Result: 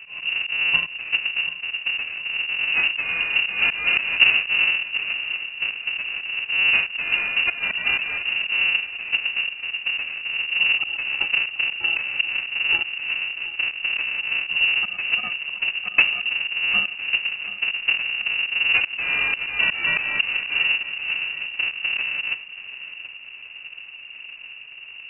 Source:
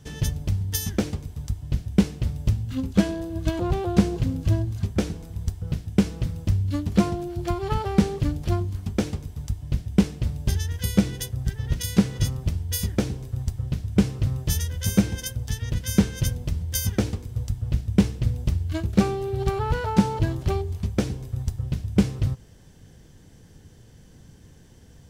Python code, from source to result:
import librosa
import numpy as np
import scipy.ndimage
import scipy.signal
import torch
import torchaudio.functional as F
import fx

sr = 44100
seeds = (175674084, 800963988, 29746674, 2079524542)

p1 = fx.halfwave_hold(x, sr)
p2 = fx.low_shelf(p1, sr, hz=440.0, db=4.0)
p3 = fx.auto_swell(p2, sr, attack_ms=210.0)
p4 = p3 + fx.echo_feedback(p3, sr, ms=730, feedback_pct=47, wet_db=-15.0, dry=0)
y = fx.freq_invert(p4, sr, carrier_hz=2800)